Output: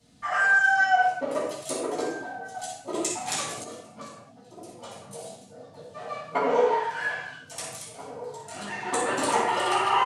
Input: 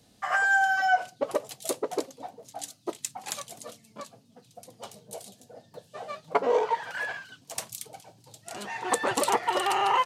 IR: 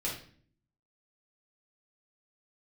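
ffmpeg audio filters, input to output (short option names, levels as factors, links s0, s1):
-filter_complex "[0:a]asettb=1/sr,asplit=3[s0][s1][s2];[s0]atrim=end=8.904[s3];[s1]atrim=start=8.9:end=9.36,asetpts=PTS-STARTPTS,afade=t=in:d=0.004:c=qsin,afade=t=out:st=0.456:d=0.004:c=qsin,agate=range=0.0224:threshold=0.0631:ratio=3:detection=peak[s4];[s2]atrim=start=9.356[s5];[s3][s4]acrossfade=d=0.004:c1=hsin:c2=qsin[s6];[s6][s5]acrossfade=d=0.004:c1=qsin:c2=hsin[s7];[1:a]atrim=start_sample=2205,afade=t=out:st=0.19:d=0.01,atrim=end_sample=8820,asetrate=22491,aresample=44100[s8];[s7][s8]afir=irnorm=-1:irlink=0,asettb=1/sr,asplit=3[s9][s10][s11];[s9]atrim=end=2.944[s12];[s10]atrim=start=2.94:end=3.64,asetpts=PTS-STARTPTS,afade=t=in:d=0.004:c=qsin,afade=t=out:st=0.696:d=0.004:c=qsin,acontrast=47[s13];[s11]atrim=start=3.636[s14];[s12][s13]acrossfade=d=0.004:c1=hsin:c2=qsin[s15];[s15][s14]acrossfade=d=0.004:c1=qsin:c2=hsin,bandreject=f=1100:w=14,asplit=2[s16][s17];[s17]adelay=1633,volume=0.178,highshelf=f=4000:g=-36.7[s18];[s16][s18]amix=inputs=2:normalize=0,volume=0.473"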